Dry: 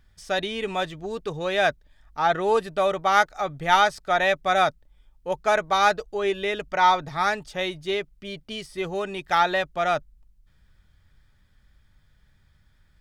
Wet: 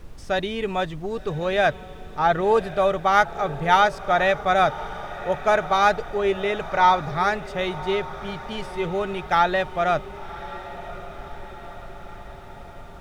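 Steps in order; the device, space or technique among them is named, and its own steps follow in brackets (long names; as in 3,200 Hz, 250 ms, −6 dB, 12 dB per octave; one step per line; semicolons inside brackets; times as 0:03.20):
car interior (parametric band 140 Hz +4.5 dB 0.71 octaves; high-shelf EQ 2,600 Hz −7 dB; brown noise bed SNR 16 dB)
feedback delay with all-pass diffusion 1,095 ms, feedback 59%, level −15 dB
level +2.5 dB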